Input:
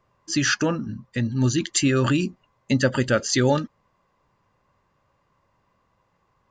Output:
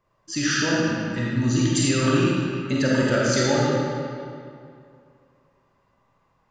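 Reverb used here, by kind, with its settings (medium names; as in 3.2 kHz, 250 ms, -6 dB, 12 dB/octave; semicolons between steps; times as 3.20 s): algorithmic reverb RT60 2.4 s, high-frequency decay 0.75×, pre-delay 5 ms, DRR -6 dB; trim -5.5 dB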